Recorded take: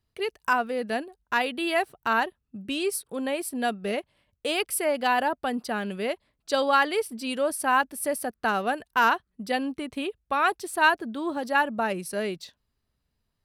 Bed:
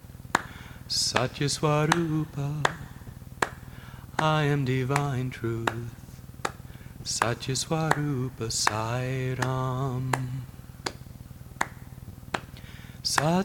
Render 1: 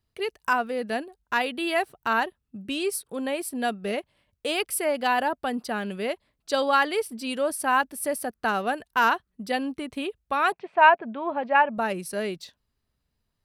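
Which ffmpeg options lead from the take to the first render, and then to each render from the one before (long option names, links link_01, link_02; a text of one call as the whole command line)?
ffmpeg -i in.wav -filter_complex "[0:a]asettb=1/sr,asplit=3[link_01][link_02][link_03];[link_01]atrim=end=10.524[link_04];[link_02]atrim=start=10.52:end=11.78,asetpts=PTS-STARTPTS,afade=type=in:duration=0.004:curve=qsin,afade=type=out:start_time=1.256:duration=0.004:curve=qsin,highpass=150,equalizer=frequency=170:width_type=q:width=4:gain=8,equalizer=frequency=310:width_type=q:width=4:gain=-7,equalizer=frequency=660:width_type=q:width=4:gain=8,equalizer=frequency=950:width_type=q:width=4:gain=6,equalizer=frequency=2400:width_type=q:width=4:gain=8,lowpass=frequency=2700:width=0.5412,lowpass=frequency=2700:width=1.3066[link_05];[link_03]atrim=start=11.776[link_06];[link_04][link_05]acrossfade=duration=0.004:curve1=hsin:curve2=qsin[link_07];[link_07][link_06]acrossfade=duration=0.004:curve1=qsin:curve2=hsin" out.wav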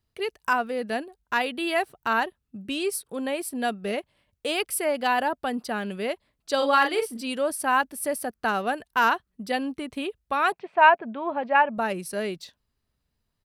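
ffmpeg -i in.wav -filter_complex "[0:a]asplit=3[link_01][link_02][link_03];[link_01]afade=type=out:start_time=6.59:duration=0.02[link_04];[link_02]asplit=2[link_05][link_06];[link_06]adelay=39,volume=-5dB[link_07];[link_05][link_07]amix=inputs=2:normalize=0,afade=type=in:start_time=6.59:duration=0.02,afade=type=out:start_time=7.2:duration=0.02[link_08];[link_03]afade=type=in:start_time=7.2:duration=0.02[link_09];[link_04][link_08][link_09]amix=inputs=3:normalize=0" out.wav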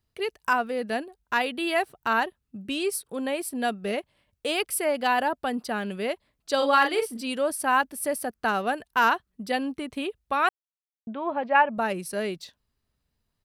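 ffmpeg -i in.wav -filter_complex "[0:a]asplit=3[link_01][link_02][link_03];[link_01]atrim=end=10.49,asetpts=PTS-STARTPTS,afade=type=out:start_time=10.486:duration=0.004:curve=hsin[link_04];[link_02]atrim=start=10.49:end=11.07,asetpts=PTS-STARTPTS,volume=0[link_05];[link_03]atrim=start=11.07,asetpts=PTS-STARTPTS,afade=type=in:duration=0.004:curve=hsin[link_06];[link_04][link_05][link_06]concat=n=3:v=0:a=1" out.wav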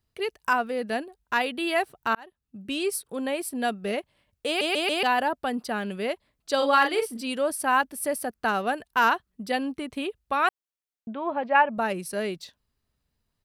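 ffmpeg -i in.wav -filter_complex "[0:a]asplit=6[link_01][link_02][link_03][link_04][link_05][link_06];[link_01]atrim=end=2.15,asetpts=PTS-STARTPTS,afade=type=out:start_time=2.146:duration=0.004:curve=hsin[link_07];[link_02]atrim=start=2.15:end=4.612,asetpts=PTS-STARTPTS,afade=type=in:duration=0.6[link_08];[link_03]atrim=start=4.468:end=4.612[link_09];[link_04]atrim=start=4.468:end=4.612[link_10];[link_05]atrim=start=4.468:end=4.612[link_11];[link_06]atrim=start=5.028[link_12];[link_07][link_08]concat=n=2:v=0:a=1[link_13];[link_13][link_09]acrossfade=duration=0.004:curve1=hsin:curve2=hsin[link_14];[link_14][link_10]acrossfade=duration=0.004:curve1=hsin:curve2=hsin[link_15];[link_15][link_11]acrossfade=duration=0.004:curve1=hsin:curve2=hsin[link_16];[link_16][link_12]acrossfade=duration=0.004:curve1=hsin:curve2=hsin" out.wav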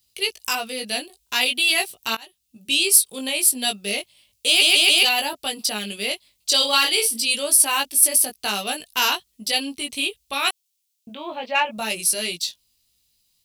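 ffmpeg -i in.wav -af "flanger=delay=17.5:depth=2.3:speed=0.4,aexciter=amount=5.1:drive=9.2:freq=2400" out.wav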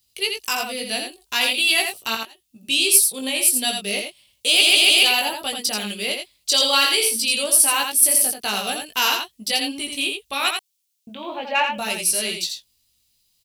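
ffmpeg -i in.wav -af "aecho=1:1:84:0.531" out.wav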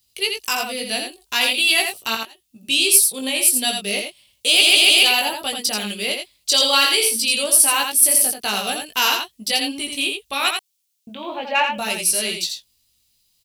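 ffmpeg -i in.wav -af "volume=1.5dB,alimiter=limit=-1dB:level=0:latency=1" out.wav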